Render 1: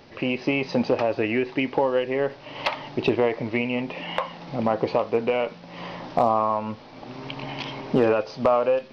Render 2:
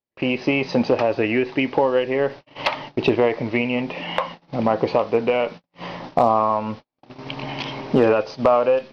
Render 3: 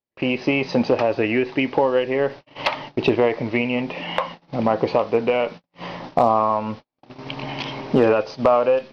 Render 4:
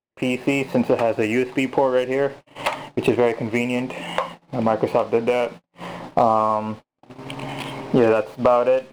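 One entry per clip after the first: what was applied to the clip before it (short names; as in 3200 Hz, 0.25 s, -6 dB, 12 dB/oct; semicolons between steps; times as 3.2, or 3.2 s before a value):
gate -36 dBFS, range -48 dB; gain +3.5 dB
nothing audible
median filter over 9 samples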